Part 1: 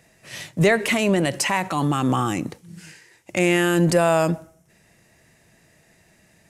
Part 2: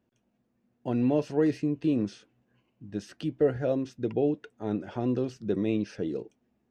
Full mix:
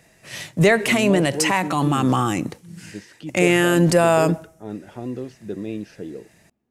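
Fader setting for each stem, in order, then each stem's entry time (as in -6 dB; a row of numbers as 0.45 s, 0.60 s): +2.0 dB, -2.0 dB; 0.00 s, 0.00 s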